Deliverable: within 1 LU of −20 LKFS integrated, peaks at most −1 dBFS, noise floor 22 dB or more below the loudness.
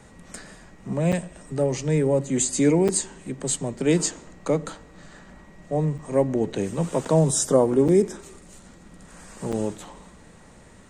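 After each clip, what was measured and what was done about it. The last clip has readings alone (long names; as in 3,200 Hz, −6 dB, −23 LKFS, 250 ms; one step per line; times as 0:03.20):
number of dropouts 6; longest dropout 6.4 ms; integrated loudness −23.5 LKFS; sample peak −6.5 dBFS; target loudness −20.0 LKFS
→ repair the gap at 0:01.12/0:02.88/0:05.98/0:07.05/0:07.88/0:09.52, 6.4 ms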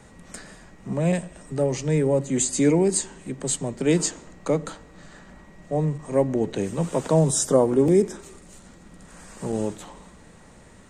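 number of dropouts 0; integrated loudness −23.5 LKFS; sample peak −6.5 dBFS; target loudness −20.0 LKFS
→ level +3.5 dB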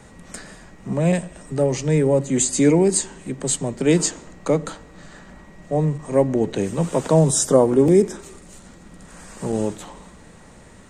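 integrated loudness −20.0 LKFS; sample peak −3.0 dBFS; background noise floor −46 dBFS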